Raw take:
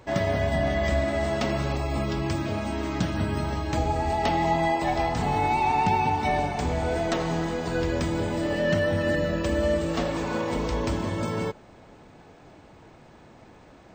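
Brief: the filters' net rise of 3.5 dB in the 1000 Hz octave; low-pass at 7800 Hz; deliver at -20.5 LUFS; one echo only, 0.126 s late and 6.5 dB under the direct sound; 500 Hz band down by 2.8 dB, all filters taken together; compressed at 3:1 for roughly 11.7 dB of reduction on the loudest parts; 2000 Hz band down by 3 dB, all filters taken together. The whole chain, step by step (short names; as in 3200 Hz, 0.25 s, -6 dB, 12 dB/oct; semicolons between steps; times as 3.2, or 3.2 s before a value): LPF 7800 Hz; bell 500 Hz -7 dB; bell 1000 Hz +8 dB; bell 2000 Hz -5.5 dB; compressor 3:1, threshold -33 dBFS; echo 0.126 s -6.5 dB; gain +13.5 dB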